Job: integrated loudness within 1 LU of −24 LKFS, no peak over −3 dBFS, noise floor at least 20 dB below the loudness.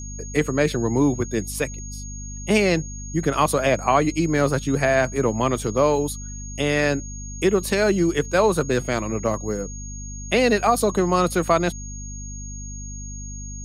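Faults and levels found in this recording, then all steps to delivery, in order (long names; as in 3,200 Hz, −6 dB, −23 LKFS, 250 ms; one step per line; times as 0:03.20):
mains hum 50 Hz; hum harmonics up to 250 Hz; level of the hum −32 dBFS; interfering tone 6,600 Hz; level of the tone −37 dBFS; integrated loudness −21.5 LKFS; sample peak −4.5 dBFS; target loudness −24.0 LKFS
→ mains-hum notches 50/100/150/200/250 Hz
notch filter 6,600 Hz, Q 30
level −2.5 dB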